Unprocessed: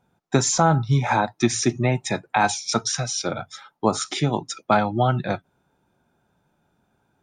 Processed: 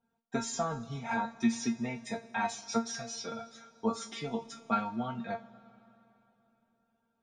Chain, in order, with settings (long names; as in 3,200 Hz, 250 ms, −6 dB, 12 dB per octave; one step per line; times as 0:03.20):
high-shelf EQ 5,800 Hz −8 dB
tuned comb filter 230 Hz, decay 0.19 s, harmonics all, mix 100%
on a send: convolution reverb RT60 3.3 s, pre-delay 5 ms, DRR 16.5 dB